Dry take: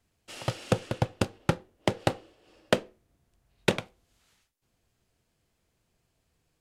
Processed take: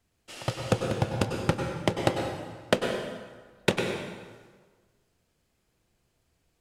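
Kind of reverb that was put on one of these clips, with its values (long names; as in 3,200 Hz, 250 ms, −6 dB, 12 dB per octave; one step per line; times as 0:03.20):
dense smooth reverb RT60 1.5 s, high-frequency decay 0.75×, pre-delay 85 ms, DRR 2.5 dB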